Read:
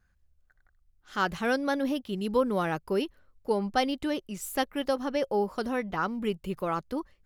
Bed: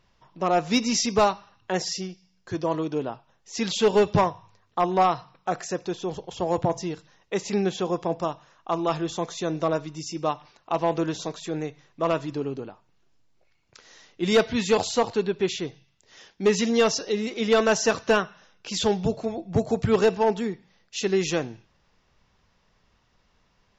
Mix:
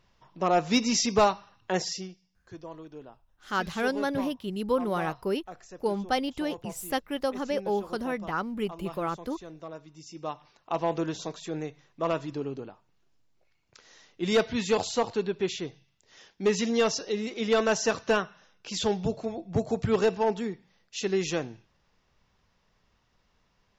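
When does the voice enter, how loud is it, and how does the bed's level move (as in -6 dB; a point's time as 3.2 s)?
2.35 s, -1.0 dB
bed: 1.78 s -1.5 dB
2.71 s -17 dB
9.72 s -17 dB
10.63 s -4 dB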